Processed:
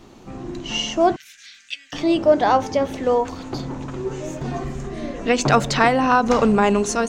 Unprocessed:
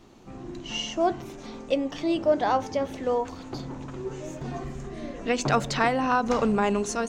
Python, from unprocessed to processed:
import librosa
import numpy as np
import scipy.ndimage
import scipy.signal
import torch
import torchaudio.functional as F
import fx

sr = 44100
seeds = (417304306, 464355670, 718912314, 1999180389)

y = fx.ellip_highpass(x, sr, hz=1600.0, order=4, stop_db=40, at=(1.16, 1.93))
y = F.gain(torch.from_numpy(y), 7.0).numpy()